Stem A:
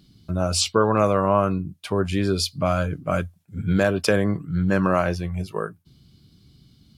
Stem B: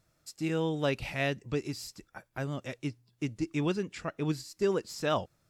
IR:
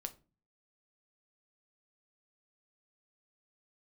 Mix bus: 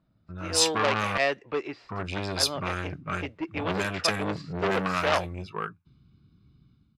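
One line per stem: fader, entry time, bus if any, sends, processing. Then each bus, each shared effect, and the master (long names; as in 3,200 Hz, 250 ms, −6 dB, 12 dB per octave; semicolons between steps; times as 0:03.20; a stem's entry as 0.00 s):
−13.0 dB, 0.00 s, muted 0:01.18–0:01.89, no send, tilt shelving filter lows −5.5 dB, about 940 Hz; comb filter 0.8 ms, depth 55%
+0.5 dB, 0.00 s, no send, three-way crossover with the lows and the highs turned down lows −22 dB, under 390 Hz, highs −17 dB, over 3,500 Hz; automatic gain control gain up to 8 dB; automatic ducking −8 dB, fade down 0.35 s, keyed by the first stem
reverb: not used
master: low-pass that shuts in the quiet parts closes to 1,200 Hz, open at −28 dBFS; automatic gain control gain up to 10 dB; saturating transformer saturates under 2,200 Hz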